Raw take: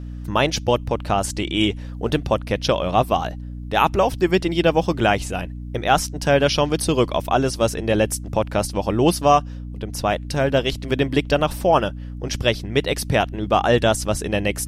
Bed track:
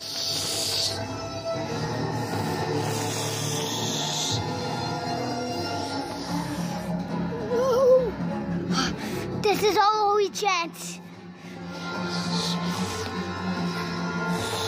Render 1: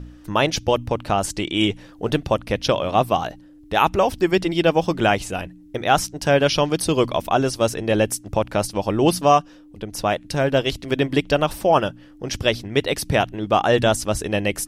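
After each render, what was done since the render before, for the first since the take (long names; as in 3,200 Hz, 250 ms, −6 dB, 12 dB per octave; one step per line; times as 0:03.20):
hum removal 60 Hz, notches 4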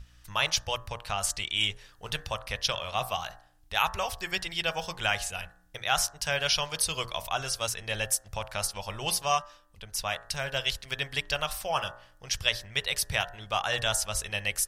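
guitar amp tone stack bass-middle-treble 10-0-10
hum removal 59.05 Hz, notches 32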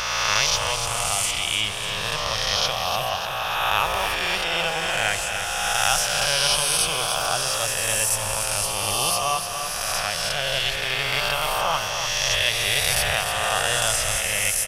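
peak hold with a rise ahead of every peak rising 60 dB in 2.70 s
repeating echo 296 ms, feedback 58%, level −8 dB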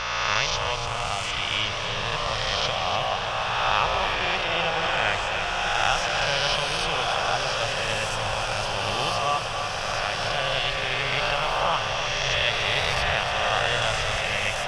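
high-frequency loss of the air 160 metres
feedback delay with all-pass diffusion 1,275 ms, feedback 68%, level −7 dB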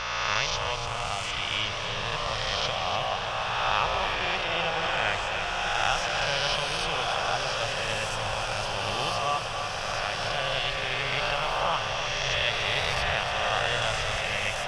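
level −3 dB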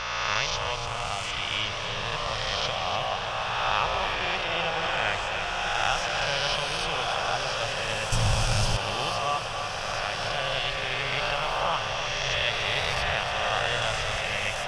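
0:08.12–0:08.77: bass and treble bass +14 dB, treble +9 dB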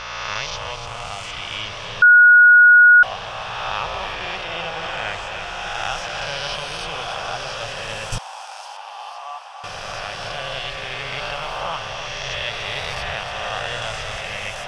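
0:02.02–0:03.03: beep over 1,450 Hz −6 dBFS
0:08.18–0:09.64: four-pole ladder high-pass 750 Hz, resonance 65%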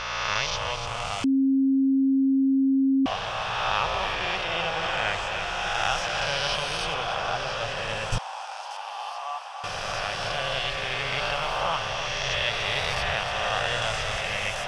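0:01.24–0:03.06: beep over 269 Hz −18 dBFS
0:06.94–0:08.71: low-pass filter 3,900 Hz 6 dB per octave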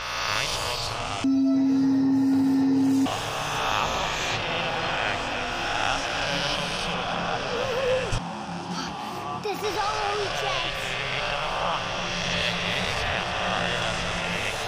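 mix in bed track −7.5 dB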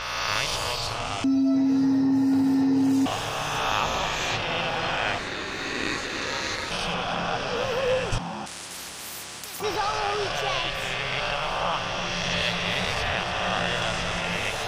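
0:05.18–0:06.71: ring modulation 1,100 Hz
0:08.46–0:09.60: every bin compressed towards the loudest bin 10 to 1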